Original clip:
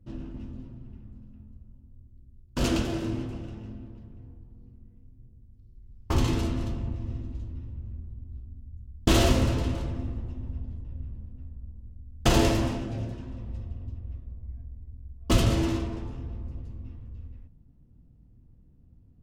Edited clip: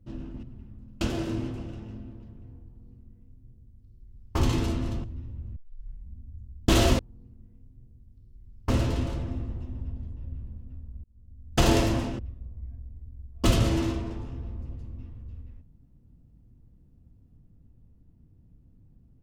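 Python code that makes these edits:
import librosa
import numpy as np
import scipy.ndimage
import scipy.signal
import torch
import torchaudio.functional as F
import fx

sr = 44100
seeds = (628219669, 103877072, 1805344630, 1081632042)

y = fx.edit(x, sr, fx.cut(start_s=0.43, length_s=0.34),
    fx.cut(start_s=1.35, length_s=1.41),
    fx.duplicate(start_s=4.41, length_s=1.71, to_s=9.38),
    fx.cut(start_s=6.79, length_s=0.64),
    fx.tape_start(start_s=7.95, length_s=0.65),
    fx.fade_in_span(start_s=11.72, length_s=0.46),
    fx.cut(start_s=12.87, length_s=1.18), tone=tone)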